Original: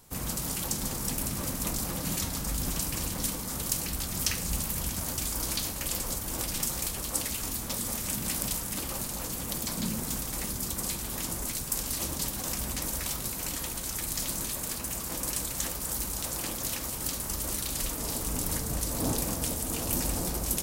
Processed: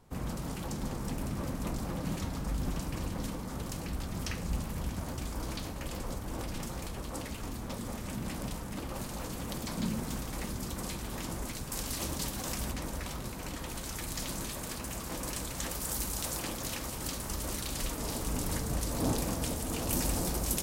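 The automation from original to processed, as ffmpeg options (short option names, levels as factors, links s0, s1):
-af "asetnsamples=n=441:p=0,asendcmd='8.96 lowpass f 2500;11.73 lowpass f 4800;12.71 lowpass f 1800;13.69 lowpass f 3500;15.71 lowpass f 8900;16.39 lowpass f 4300;19.89 lowpass f 8300',lowpass=f=1300:p=1"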